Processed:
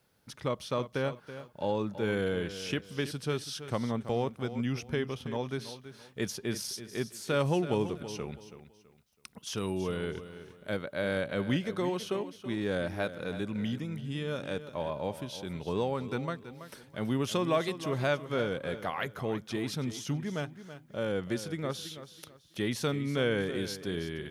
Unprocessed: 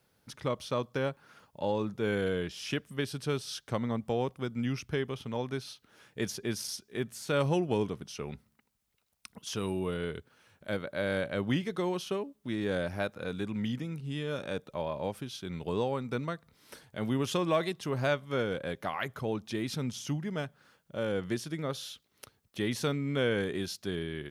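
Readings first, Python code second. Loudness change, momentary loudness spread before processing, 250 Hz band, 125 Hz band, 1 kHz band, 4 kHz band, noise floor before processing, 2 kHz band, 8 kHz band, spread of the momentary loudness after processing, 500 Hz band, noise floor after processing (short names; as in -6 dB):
0.0 dB, 10 LU, +0.5 dB, 0.0 dB, +0.5 dB, +0.5 dB, -74 dBFS, 0.0 dB, 0.0 dB, 12 LU, +0.5 dB, -60 dBFS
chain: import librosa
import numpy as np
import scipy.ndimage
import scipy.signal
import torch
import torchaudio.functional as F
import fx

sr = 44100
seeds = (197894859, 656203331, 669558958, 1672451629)

y = fx.echo_feedback(x, sr, ms=328, feedback_pct=29, wet_db=-12.5)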